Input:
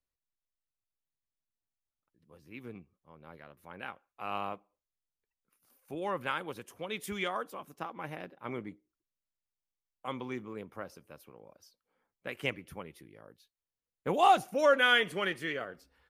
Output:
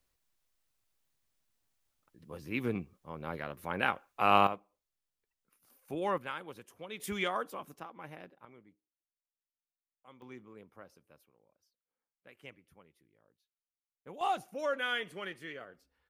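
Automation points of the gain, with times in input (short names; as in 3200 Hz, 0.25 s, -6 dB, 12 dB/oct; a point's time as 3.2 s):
+12 dB
from 4.47 s +2 dB
from 6.18 s -6 dB
from 7 s +1 dB
from 7.8 s -6.5 dB
from 8.45 s -19 dB
from 10.22 s -10.5 dB
from 11.26 s -17 dB
from 14.21 s -9 dB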